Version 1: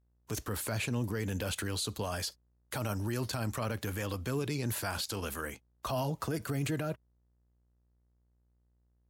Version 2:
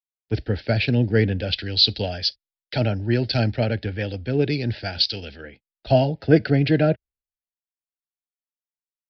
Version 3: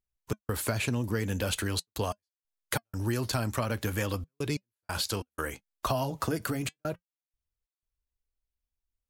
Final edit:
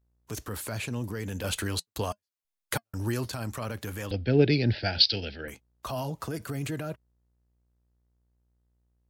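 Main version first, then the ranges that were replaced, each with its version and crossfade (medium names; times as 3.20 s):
1
1.44–3.25 s: from 3
4.11–5.48 s: from 2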